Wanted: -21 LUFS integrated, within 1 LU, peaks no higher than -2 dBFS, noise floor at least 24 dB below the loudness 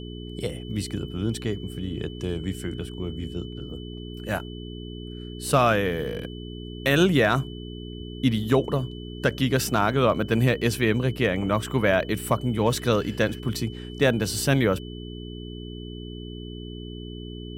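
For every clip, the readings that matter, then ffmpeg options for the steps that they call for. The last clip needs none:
hum 60 Hz; highest harmonic 420 Hz; hum level -35 dBFS; steady tone 3 kHz; tone level -45 dBFS; loudness -25.0 LUFS; peak level -7.5 dBFS; loudness target -21.0 LUFS
-> -af "bandreject=f=60:t=h:w=4,bandreject=f=120:t=h:w=4,bandreject=f=180:t=h:w=4,bandreject=f=240:t=h:w=4,bandreject=f=300:t=h:w=4,bandreject=f=360:t=h:w=4,bandreject=f=420:t=h:w=4"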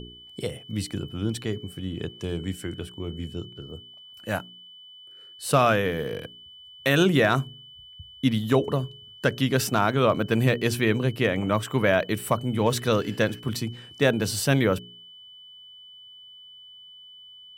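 hum not found; steady tone 3 kHz; tone level -45 dBFS
-> -af "bandreject=f=3000:w=30"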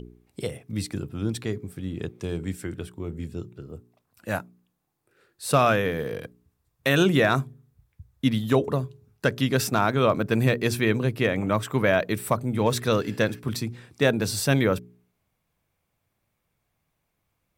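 steady tone not found; loudness -25.5 LUFS; peak level -7.5 dBFS; loudness target -21.0 LUFS
-> -af "volume=1.68"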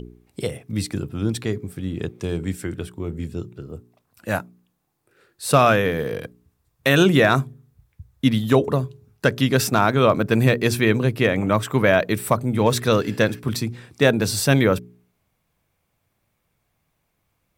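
loudness -21.0 LUFS; peak level -3.0 dBFS; noise floor -72 dBFS

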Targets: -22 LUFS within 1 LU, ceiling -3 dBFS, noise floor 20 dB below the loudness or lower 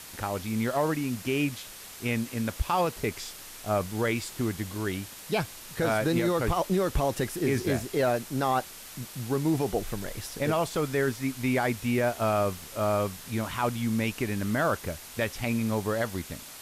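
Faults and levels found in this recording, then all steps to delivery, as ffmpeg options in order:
noise floor -45 dBFS; noise floor target -49 dBFS; loudness -29.0 LUFS; peak level -15.5 dBFS; loudness target -22.0 LUFS
-> -af "afftdn=nr=6:nf=-45"
-af "volume=2.24"

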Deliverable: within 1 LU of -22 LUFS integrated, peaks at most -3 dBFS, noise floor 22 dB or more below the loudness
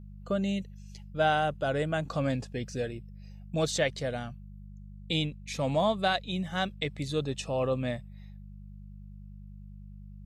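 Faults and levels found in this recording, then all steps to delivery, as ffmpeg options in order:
hum 50 Hz; highest harmonic 200 Hz; hum level -44 dBFS; loudness -31.0 LUFS; peak level -14.5 dBFS; loudness target -22.0 LUFS
-> -af "bandreject=f=50:t=h:w=4,bandreject=f=100:t=h:w=4,bandreject=f=150:t=h:w=4,bandreject=f=200:t=h:w=4"
-af "volume=2.82"

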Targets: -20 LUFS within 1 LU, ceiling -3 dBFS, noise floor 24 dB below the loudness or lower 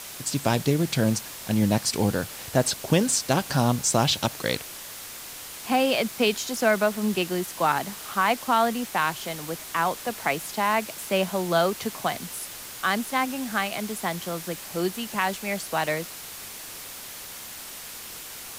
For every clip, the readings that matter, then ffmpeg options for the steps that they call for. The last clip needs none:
noise floor -40 dBFS; noise floor target -50 dBFS; loudness -25.5 LUFS; peak level -8.5 dBFS; loudness target -20.0 LUFS
-> -af "afftdn=nr=10:nf=-40"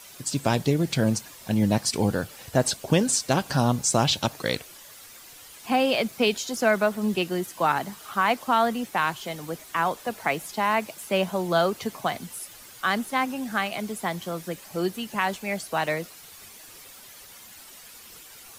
noise floor -47 dBFS; noise floor target -50 dBFS
-> -af "afftdn=nr=6:nf=-47"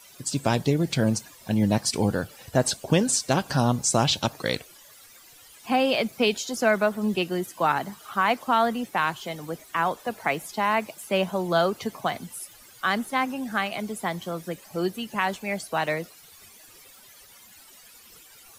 noise floor -51 dBFS; loudness -25.5 LUFS; peak level -9.0 dBFS; loudness target -20.0 LUFS
-> -af "volume=1.88"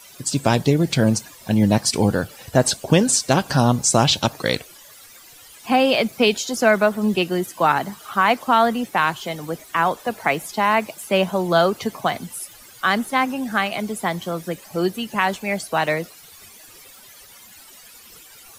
loudness -20.5 LUFS; peak level -3.5 dBFS; noise floor -46 dBFS

